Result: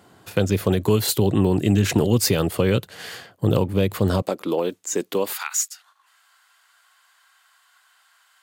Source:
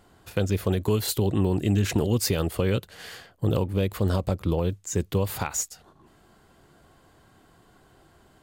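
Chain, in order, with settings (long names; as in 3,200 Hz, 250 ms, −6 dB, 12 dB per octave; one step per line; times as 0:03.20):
high-pass filter 98 Hz 24 dB per octave, from 0:04.22 250 Hz, from 0:05.33 1,200 Hz
level +5.5 dB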